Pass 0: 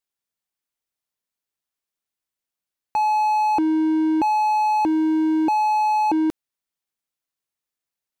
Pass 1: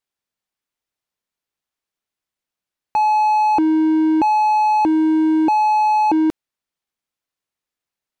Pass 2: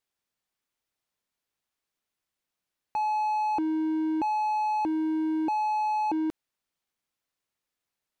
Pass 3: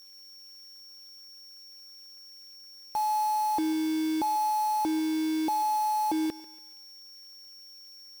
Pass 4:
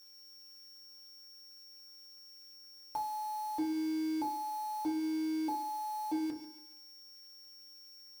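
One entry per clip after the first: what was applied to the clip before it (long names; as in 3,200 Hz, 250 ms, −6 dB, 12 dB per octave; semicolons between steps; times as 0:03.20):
high-shelf EQ 6,800 Hz −8.5 dB; level +4 dB
brickwall limiter −22.5 dBFS, peak gain reduction 12 dB
steady tone 5,500 Hz −53 dBFS; log-companded quantiser 4 bits; feedback echo with a high-pass in the loop 142 ms, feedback 44%, high-pass 390 Hz, level −16 dB
downward compressor, threshold −31 dBFS, peak gain reduction 5.5 dB; feedback delay network reverb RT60 0.35 s, low-frequency decay 1.35×, high-frequency decay 0.5×, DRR 0 dB; level −7 dB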